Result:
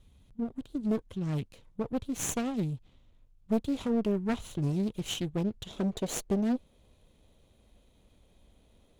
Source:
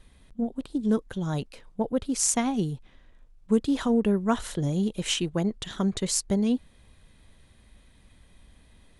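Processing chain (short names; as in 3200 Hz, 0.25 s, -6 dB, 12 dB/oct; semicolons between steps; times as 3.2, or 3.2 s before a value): minimum comb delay 0.3 ms; bell 100 Hz +8.5 dB 1.5 oct, from 5.67 s 510 Hz; Doppler distortion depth 0.62 ms; gain -7 dB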